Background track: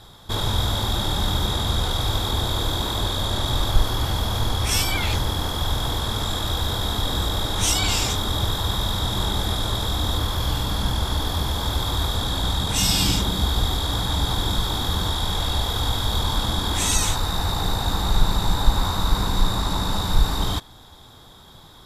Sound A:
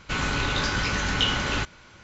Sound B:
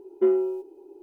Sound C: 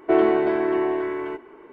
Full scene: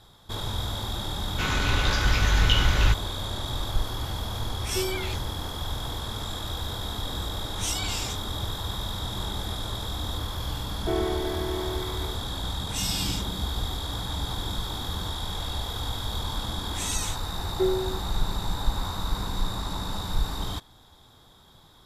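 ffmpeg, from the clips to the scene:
-filter_complex "[2:a]asplit=2[s0][s1];[0:a]volume=0.398[s2];[1:a]asubboost=boost=12:cutoff=96[s3];[s0]acontrast=83[s4];[s1]lowshelf=f=270:g=-9.5[s5];[s3]atrim=end=2.03,asetpts=PTS-STARTPTS,volume=0.891,afade=t=in:d=0.004:c=hsin,afade=t=out:st=2.026:d=0.004:c=hsin,adelay=1290[s6];[s4]atrim=end=1.02,asetpts=PTS-STARTPTS,volume=0.141,afade=t=in:d=0.004:c=hsin,afade=t=out:st=1.016:d=0.004:c=hsin,adelay=4540[s7];[3:a]atrim=end=1.72,asetpts=PTS-STARTPTS,volume=0.316,afade=t=in:d=0.004:c=hsin,afade=t=out:st=1.716:d=0.004:c=hsin,adelay=10780[s8];[s5]atrim=end=1.02,asetpts=PTS-STARTPTS,volume=0.891,afade=t=in:d=0.004:c=hsin,afade=t=out:st=1.016:d=0.004:c=hsin,adelay=17380[s9];[s2][s6][s7][s8][s9]amix=inputs=5:normalize=0"

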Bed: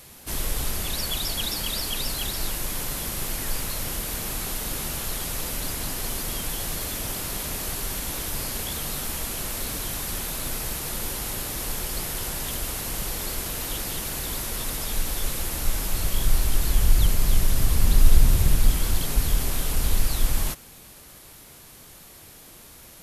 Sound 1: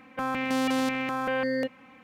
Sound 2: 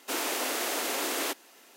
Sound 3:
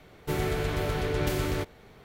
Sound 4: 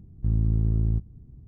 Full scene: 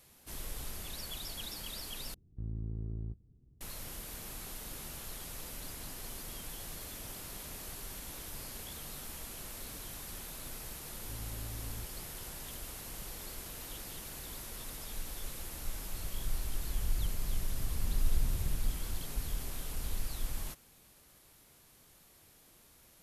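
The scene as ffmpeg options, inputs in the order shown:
-filter_complex "[4:a]asplit=2[s0][s1];[0:a]volume=0.188[s2];[s0]equalizer=f=430:w=1.3:g=6[s3];[s1]asoftclip=type=hard:threshold=0.0562[s4];[s2]asplit=2[s5][s6];[s5]atrim=end=2.144[s7];[s3]atrim=end=1.47,asetpts=PTS-STARTPTS,volume=0.15[s8];[s6]atrim=start=3.606[s9];[s4]atrim=end=1.47,asetpts=PTS-STARTPTS,volume=0.168,afade=t=in:d=0.004:c=hsin,afade=t=out:st=1.466:d=0.004:c=hsin,adelay=10850[s10];[s7][s8]acrossfade=d=0.004:c1=hsin:c2=hsin[s11];[s11][s9]acrossfade=d=0.004:c1=hsin:c2=hsin[s12];[s12][s10]amix=inputs=2:normalize=0"

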